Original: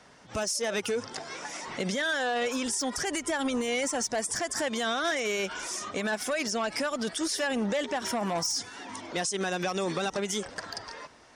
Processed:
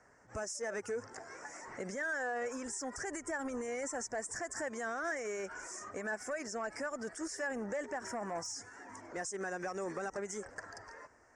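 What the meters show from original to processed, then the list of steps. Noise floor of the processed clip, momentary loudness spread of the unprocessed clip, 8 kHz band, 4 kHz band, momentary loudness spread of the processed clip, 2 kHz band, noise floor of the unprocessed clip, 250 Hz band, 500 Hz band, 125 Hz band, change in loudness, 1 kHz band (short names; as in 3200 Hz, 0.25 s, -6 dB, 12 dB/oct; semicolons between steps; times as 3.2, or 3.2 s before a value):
-62 dBFS, 10 LU, -10.5 dB, -18.5 dB, 10 LU, -7.5 dB, -52 dBFS, -11.0 dB, -8.0 dB, -12.5 dB, -9.5 dB, -8.5 dB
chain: EQ curve 110 Hz 0 dB, 160 Hz -8 dB, 410 Hz -1 dB, 1100 Hz -3 dB, 1800 Hz +1 dB, 3600 Hz -28 dB, 5200 Hz -9 dB, 7500 Hz 0 dB, 12000 Hz -20 dB; gain -6.5 dB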